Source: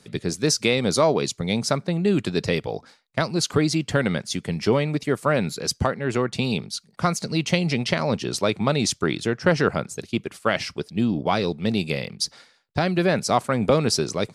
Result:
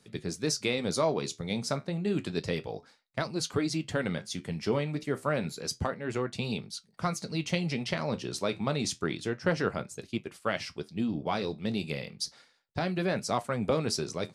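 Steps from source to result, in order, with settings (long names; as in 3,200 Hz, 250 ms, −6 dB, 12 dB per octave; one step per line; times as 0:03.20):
flanger 0.3 Hz, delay 8.8 ms, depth 5.8 ms, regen −63%
level −4.5 dB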